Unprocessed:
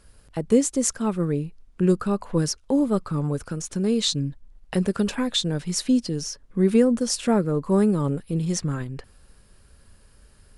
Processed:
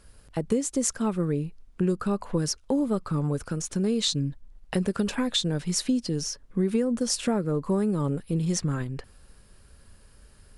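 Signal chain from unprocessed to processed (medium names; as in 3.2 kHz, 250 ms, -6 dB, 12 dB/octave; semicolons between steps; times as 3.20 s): compression 6:1, threshold -21 dBFS, peak gain reduction 9 dB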